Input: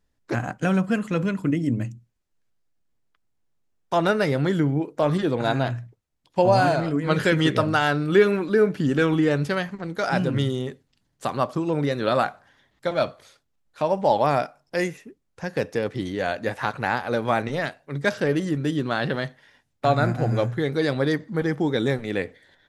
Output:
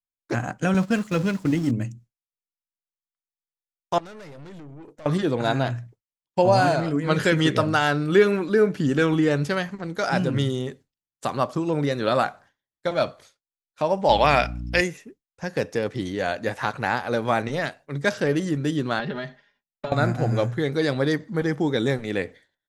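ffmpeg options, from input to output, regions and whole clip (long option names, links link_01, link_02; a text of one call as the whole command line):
ffmpeg -i in.wav -filter_complex "[0:a]asettb=1/sr,asplit=3[link_01][link_02][link_03];[link_01]atrim=end=0.744[link_04];[link_02]atrim=start=0.74:end=1.71,asetpts=PTS-STARTPTS,afade=type=in:duration=0.004:curve=qsin,afade=type=out:start_time=0.966:duration=0.004:curve=qsin,aeval=exprs='val(0)+0.5*0.0188*sgn(val(0))':channel_layout=same,agate=range=-11dB:threshold=-26dB:ratio=16:release=100:detection=peak,equalizer=frequency=4700:width_type=o:width=1:gain=4[link_05];[link_03]atrim=start=1.706[link_06];[link_04][link_05]acrossfade=duration=0.004:curve1=hsin:curve2=qsin[link_07];[link_07][link_06]acrossfade=duration=0.004:curve1=qsin:curve2=hsin,asettb=1/sr,asplit=3[link_08][link_09][link_10];[link_08]atrim=end=3.984[link_11];[link_09]atrim=start=3.98:end=5.06,asetpts=PTS-STARTPTS,afade=type=in:duration=0.004:curve=qsin,afade=type=out:start_time=1.076:duration=0.004:curve=qsin,acompressor=threshold=-33dB:ratio=5:attack=3.2:release=140:knee=1:detection=peak,aeval=exprs='(tanh(89.1*val(0)+0.35)-tanh(0.35))/89.1':channel_layout=same[link_12];[link_10]atrim=start=5.056[link_13];[link_11][link_12]acrossfade=duration=0.004:curve1=hsin:curve2=qsin[link_14];[link_14][link_13]acrossfade=duration=0.004:curve1=qsin:curve2=hsin,asettb=1/sr,asplit=3[link_15][link_16][link_17];[link_15]atrim=end=14.094[link_18];[link_16]atrim=start=14.09:end=14.81,asetpts=PTS-STARTPTS,afade=type=in:duration=0.004:curve=qsin,afade=type=out:start_time=0.716:duration=0.004:curve=qsin,equalizer=frequency=2700:width_type=o:width=1.5:gain=14,aeval=exprs='val(0)+0.0316*(sin(2*PI*60*n/s)+sin(2*PI*2*60*n/s)/2+sin(2*PI*3*60*n/s)/3+sin(2*PI*4*60*n/s)/4+sin(2*PI*5*60*n/s)/5)':channel_layout=same[link_19];[link_17]atrim=start=14.806[link_20];[link_18][link_19]acrossfade=duration=0.004:curve1=hsin:curve2=qsin[link_21];[link_21][link_20]acrossfade=duration=0.004:curve1=qsin:curve2=hsin,asettb=1/sr,asplit=3[link_22][link_23][link_24];[link_22]atrim=end=18.994[link_25];[link_23]atrim=start=18.99:end=19.92,asetpts=PTS-STARTPTS,afade=type=in:duration=0.004:curve=qsin,afade=type=out:start_time=0.926:duration=0.004:curve=qsin,lowpass=4400,acompressor=threshold=-28dB:ratio=6:attack=3.2:release=140:knee=1:detection=peak,aecho=1:1:4.9:0.92,atrim=end_sample=41013[link_26];[link_24]atrim=start=19.916[link_27];[link_25][link_26]acrossfade=duration=0.004:curve1=hsin:curve2=qsin[link_28];[link_28][link_27]acrossfade=duration=0.004:curve1=qsin:curve2=hsin,agate=range=-33dB:threshold=-42dB:ratio=3:detection=peak,equalizer=frequency=6600:width_type=o:width=0.87:gain=4" out.wav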